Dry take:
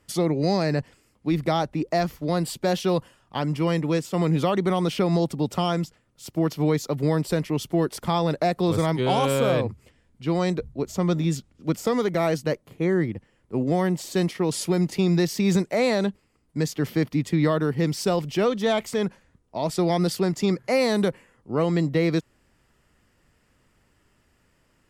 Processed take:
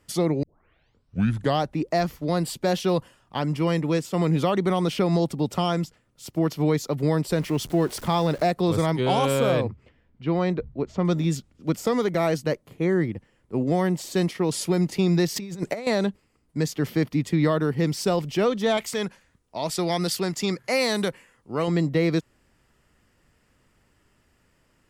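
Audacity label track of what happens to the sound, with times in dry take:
0.430000	0.430000	tape start 1.23 s
7.380000	8.510000	jump at every zero crossing of -38 dBFS
9.680000	11.050000	low-pass 3 kHz
15.360000	15.870000	compressor with a negative ratio -28 dBFS, ratio -0.5
18.770000	21.680000	tilt shelf lows -4.5 dB, about 1.1 kHz

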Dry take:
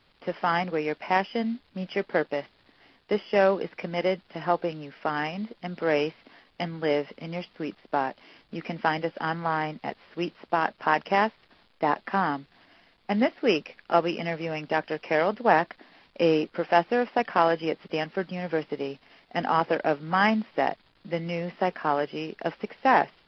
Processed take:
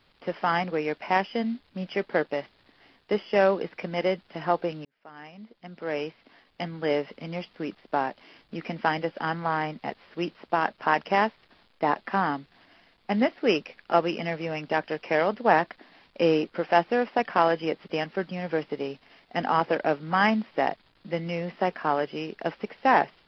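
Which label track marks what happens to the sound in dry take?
4.850000	7.050000	fade in

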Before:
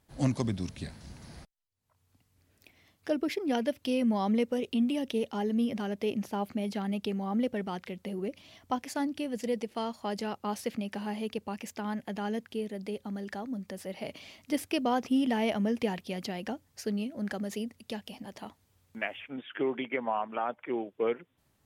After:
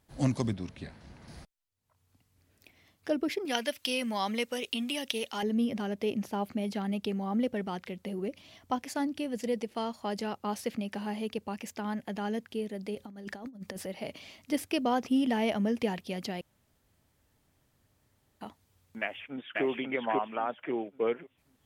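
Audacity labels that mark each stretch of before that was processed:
0.530000	1.280000	tone controls bass -5 dB, treble -12 dB
3.450000	5.430000	tilt shelf lows -9.5 dB, about 800 Hz
12.950000	13.870000	compressor with a negative ratio -41 dBFS, ratio -0.5
16.410000	18.410000	room tone
19.010000	19.640000	echo throw 540 ms, feedback 30%, level -1 dB

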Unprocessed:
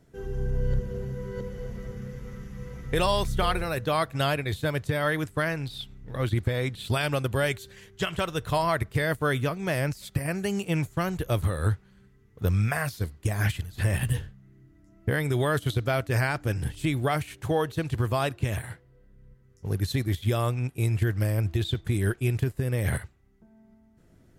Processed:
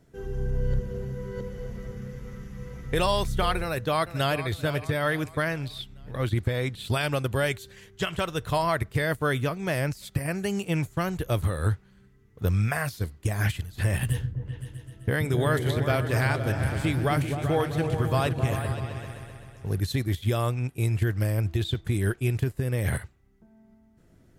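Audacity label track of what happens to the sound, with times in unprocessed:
3.620000	4.500000	echo throw 440 ms, feedback 45%, level -12.5 dB
14.070000	19.800000	delay with an opening low-pass 129 ms, low-pass from 200 Hz, each repeat up 2 oct, level -3 dB

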